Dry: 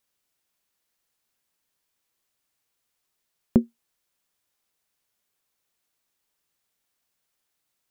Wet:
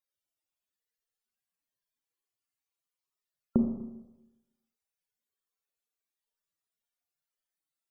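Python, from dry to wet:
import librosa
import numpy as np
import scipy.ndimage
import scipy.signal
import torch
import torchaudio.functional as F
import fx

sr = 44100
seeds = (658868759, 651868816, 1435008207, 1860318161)

y = fx.spec_topn(x, sr, count=64)
y = fx.rev_schroeder(y, sr, rt60_s=1.0, comb_ms=27, drr_db=3.0)
y = y * 10.0 ** (-7.0 / 20.0)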